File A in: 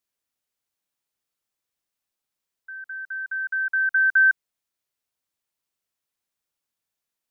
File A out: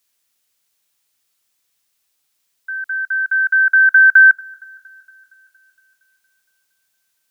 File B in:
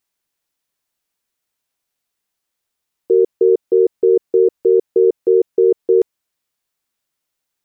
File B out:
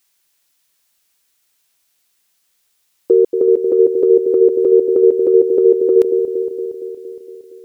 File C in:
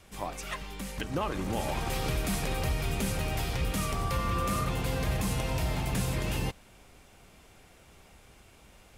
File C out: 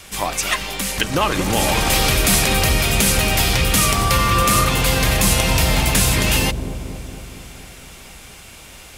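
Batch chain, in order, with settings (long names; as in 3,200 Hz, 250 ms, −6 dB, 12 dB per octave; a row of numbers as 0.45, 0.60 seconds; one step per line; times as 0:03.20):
tilt shelving filter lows −5.5 dB, about 1,400 Hz
downward compressor 2 to 1, threshold −19 dBFS
on a send: delay with a low-pass on its return 232 ms, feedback 64%, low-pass 530 Hz, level −6 dB
on the sum: normalise the peak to −1.5 dBFS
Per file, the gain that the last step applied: +11.5, +9.5, +15.5 decibels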